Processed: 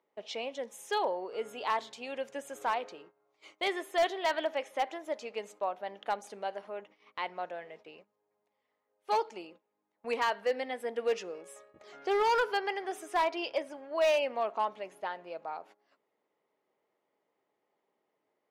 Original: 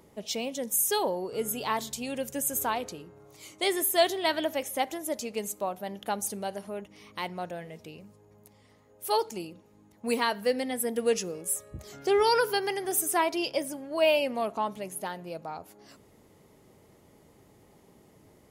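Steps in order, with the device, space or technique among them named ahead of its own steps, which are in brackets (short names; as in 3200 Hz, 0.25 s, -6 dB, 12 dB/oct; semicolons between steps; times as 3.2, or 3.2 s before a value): walkie-talkie (BPF 510–2800 Hz; hard clip -22 dBFS, distortion -15 dB; gate -54 dBFS, range -16 dB)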